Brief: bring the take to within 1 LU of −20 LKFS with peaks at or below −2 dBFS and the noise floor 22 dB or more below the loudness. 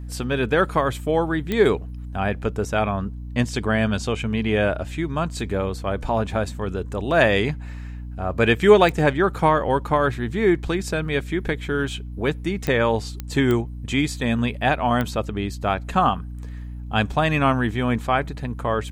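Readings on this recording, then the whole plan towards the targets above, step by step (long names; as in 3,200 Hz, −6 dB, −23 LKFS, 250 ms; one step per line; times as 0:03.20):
number of clicks 6; mains hum 60 Hz; hum harmonics up to 300 Hz; level of the hum −31 dBFS; integrated loudness −22.5 LKFS; sample peak −1.5 dBFS; target loudness −20.0 LKFS
→ click removal
hum removal 60 Hz, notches 5
level +2.5 dB
brickwall limiter −2 dBFS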